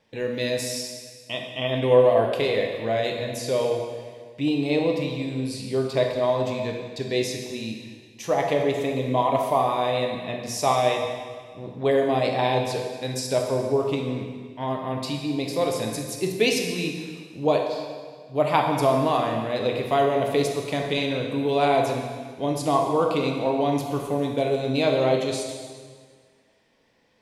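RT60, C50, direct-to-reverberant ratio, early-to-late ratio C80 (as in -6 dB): 1.7 s, 3.5 dB, 1.5 dB, 5.5 dB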